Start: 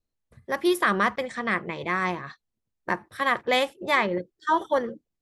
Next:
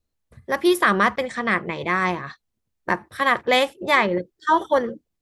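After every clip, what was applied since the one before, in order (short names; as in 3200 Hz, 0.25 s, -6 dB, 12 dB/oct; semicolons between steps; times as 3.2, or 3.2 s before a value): bell 75 Hz +5 dB 0.37 oct; gain +4.5 dB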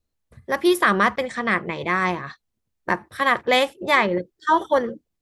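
nothing audible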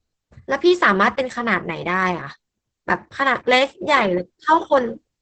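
gain +3 dB; Opus 10 kbps 48000 Hz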